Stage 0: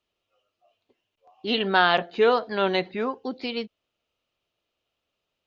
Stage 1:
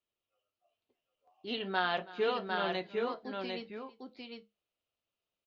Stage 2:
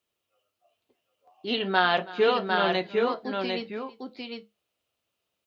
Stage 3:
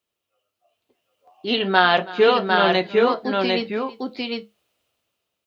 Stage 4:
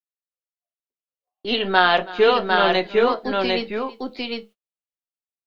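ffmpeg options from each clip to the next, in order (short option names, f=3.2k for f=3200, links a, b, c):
-filter_complex "[0:a]flanger=delay=8.8:depth=3.2:regen=-65:speed=0.39:shape=sinusoidal,asplit=2[a][b];[b]aecho=0:1:326|753:0.106|0.631[c];[a][c]amix=inputs=2:normalize=0,volume=-8dB"
-af "highpass=56,volume=9dB"
-af "dynaudnorm=f=210:g=9:m=11dB"
-filter_complex "[0:a]acrossover=split=220|800[a][b][c];[a]aeval=exprs='max(val(0),0)':c=same[d];[d][b][c]amix=inputs=3:normalize=0,agate=range=-34dB:threshold=-45dB:ratio=16:detection=peak"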